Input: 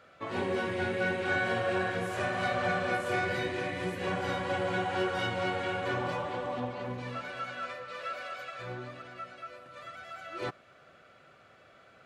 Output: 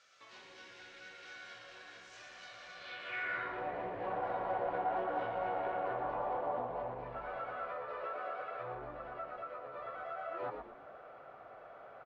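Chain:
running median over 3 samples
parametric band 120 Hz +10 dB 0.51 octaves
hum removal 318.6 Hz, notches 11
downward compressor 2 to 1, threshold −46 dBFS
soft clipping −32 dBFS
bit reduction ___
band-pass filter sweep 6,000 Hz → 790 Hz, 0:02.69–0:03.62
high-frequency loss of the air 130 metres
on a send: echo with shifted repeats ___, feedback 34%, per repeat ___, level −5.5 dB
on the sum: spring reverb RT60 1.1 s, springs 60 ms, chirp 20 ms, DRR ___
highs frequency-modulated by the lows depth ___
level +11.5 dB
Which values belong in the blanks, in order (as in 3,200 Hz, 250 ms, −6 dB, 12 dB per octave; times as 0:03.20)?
11 bits, 118 ms, −72 Hz, 16.5 dB, 0.13 ms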